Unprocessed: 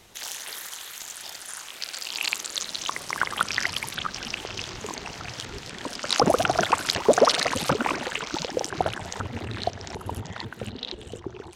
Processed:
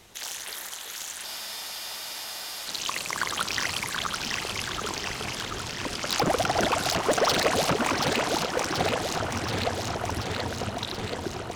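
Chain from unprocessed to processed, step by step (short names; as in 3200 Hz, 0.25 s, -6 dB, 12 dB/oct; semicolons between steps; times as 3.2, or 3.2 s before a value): hard clip -19 dBFS, distortion -7 dB; echo with dull and thin repeats by turns 0.365 s, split 930 Hz, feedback 84%, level -3.5 dB; spectral freeze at 1.27, 1.39 s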